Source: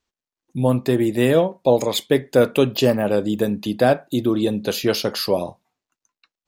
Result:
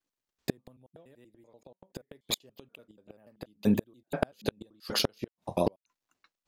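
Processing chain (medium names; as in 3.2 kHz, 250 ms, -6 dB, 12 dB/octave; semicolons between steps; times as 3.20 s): slices played last to first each 96 ms, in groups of 5; inverted gate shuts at -13 dBFS, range -40 dB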